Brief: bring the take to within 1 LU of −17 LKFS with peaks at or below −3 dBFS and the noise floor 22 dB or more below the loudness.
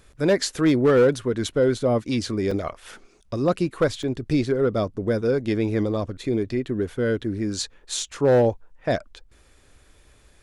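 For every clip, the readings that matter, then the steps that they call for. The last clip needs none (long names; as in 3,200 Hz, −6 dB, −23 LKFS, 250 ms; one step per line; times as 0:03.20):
share of clipped samples 0.6%; peaks flattened at −12.0 dBFS; number of dropouts 2; longest dropout 4.0 ms; integrated loudness −23.5 LKFS; sample peak −12.0 dBFS; target loudness −17.0 LKFS
→ clipped peaks rebuilt −12 dBFS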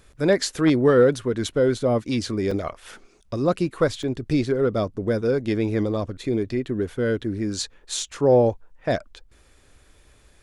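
share of clipped samples 0.0%; number of dropouts 2; longest dropout 4.0 ms
→ repair the gap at 0:02.51/0:04.03, 4 ms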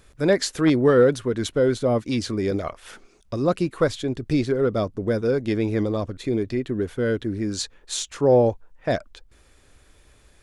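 number of dropouts 0; integrated loudness −23.0 LKFS; sample peak −6.5 dBFS; target loudness −17.0 LKFS
→ level +6 dB
brickwall limiter −3 dBFS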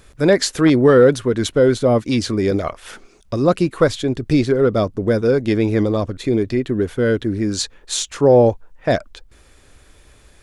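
integrated loudness −17.5 LKFS; sample peak −3.0 dBFS; background noise floor −51 dBFS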